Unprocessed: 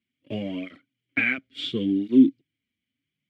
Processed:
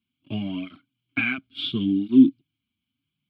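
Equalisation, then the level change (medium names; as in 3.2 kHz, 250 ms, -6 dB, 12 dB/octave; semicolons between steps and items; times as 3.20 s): treble shelf 3.8 kHz -5.5 dB; static phaser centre 1.9 kHz, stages 6; +5.0 dB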